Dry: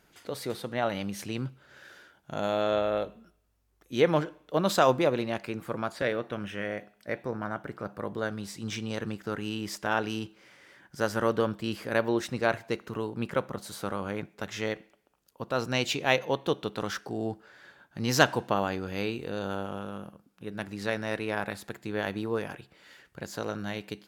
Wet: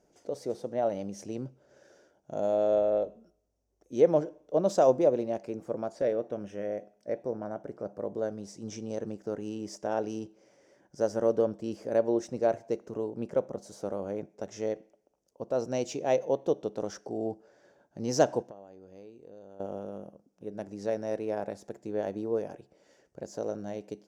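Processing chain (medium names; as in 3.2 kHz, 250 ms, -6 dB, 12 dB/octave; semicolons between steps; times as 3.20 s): FFT filter 120 Hz 0 dB, 610 Hz +11 dB, 1.2 kHz -7 dB, 1.7 kHz -8 dB, 4 kHz -10 dB, 5.8 kHz +6 dB, 13 kHz -13 dB; 18.42–19.60 s: compression 3:1, threshold -45 dBFS, peak gain reduction 21.5 dB; trim -7.5 dB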